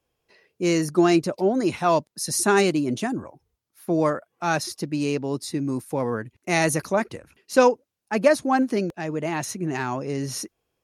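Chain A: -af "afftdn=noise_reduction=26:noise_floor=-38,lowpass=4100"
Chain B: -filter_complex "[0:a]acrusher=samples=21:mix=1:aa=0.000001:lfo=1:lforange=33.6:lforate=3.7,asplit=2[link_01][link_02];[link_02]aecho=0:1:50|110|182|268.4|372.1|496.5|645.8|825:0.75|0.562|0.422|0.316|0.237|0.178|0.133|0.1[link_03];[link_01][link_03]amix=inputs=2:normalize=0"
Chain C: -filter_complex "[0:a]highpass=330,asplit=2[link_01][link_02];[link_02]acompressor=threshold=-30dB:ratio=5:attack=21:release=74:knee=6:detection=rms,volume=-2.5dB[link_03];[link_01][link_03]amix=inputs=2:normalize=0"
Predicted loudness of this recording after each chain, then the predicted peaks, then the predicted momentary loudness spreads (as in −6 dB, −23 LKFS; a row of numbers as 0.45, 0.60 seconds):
−24.0, −20.0, −23.0 LKFS; −5.5, −3.0, −3.0 dBFS; 11, 10, 10 LU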